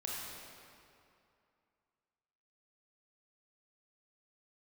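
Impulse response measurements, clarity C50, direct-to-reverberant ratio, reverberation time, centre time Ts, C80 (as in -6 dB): -2.5 dB, -5.0 dB, 2.6 s, 0.145 s, -0.5 dB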